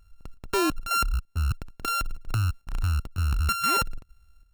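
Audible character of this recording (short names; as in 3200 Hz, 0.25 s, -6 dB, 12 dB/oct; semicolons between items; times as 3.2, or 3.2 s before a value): a buzz of ramps at a fixed pitch in blocks of 32 samples; chopped level 2.2 Hz, depth 60%, duty 75%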